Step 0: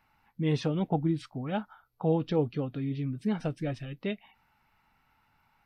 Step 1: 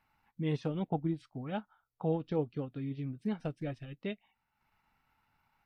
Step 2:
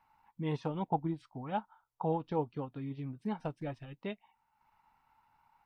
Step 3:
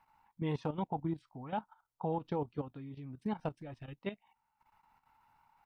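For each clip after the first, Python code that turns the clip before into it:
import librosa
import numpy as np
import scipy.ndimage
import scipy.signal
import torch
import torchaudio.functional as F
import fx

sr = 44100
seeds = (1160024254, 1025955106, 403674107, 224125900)

y1 = fx.transient(x, sr, attack_db=1, sustain_db=-8)
y1 = y1 * librosa.db_to_amplitude(-5.5)
y2 = fx.peak_eq(y1, sr, hz=930.0, db=13.5, octaves=0.6)
y2 = y2 * librosa.db_to_amplitude(-2.5)
y3 = fx.level_steps(y2, sr, step_db=12)
y3 = y3 * librosa.db_to_amplitude(3.0)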